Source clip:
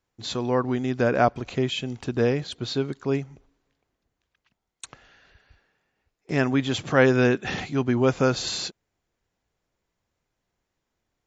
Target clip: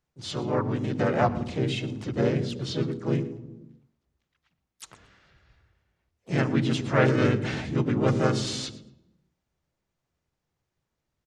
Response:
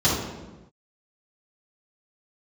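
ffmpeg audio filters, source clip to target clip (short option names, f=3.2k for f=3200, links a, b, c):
-filter_complex "[0:a]aecho=1:1:114|228:0.119|0.0202,asplit=4[a][b][c][d];[b]asetrate=37084,aresample=44100,atempo=1.18921,volume=-2dB[e];[c]asetrate=52444,aresample=44100,atempo=0.840896,volume=-4dB[f];[d]asetrate=66075,aresample=44100,atempo=0.66742,volume=-13dB[g];[a][e][f][g]amix=inputs=4:normalize=0,asplit=2[h][i];[1:a]atrim=start_sample=2205,lowshelf=f=300:g=11.5[j];[i][j]afir=irnorm=-1:irlink=0,volume=-32.5dB[k];[h][k]amix=inputs=2:normalize=0,volume=-7dB"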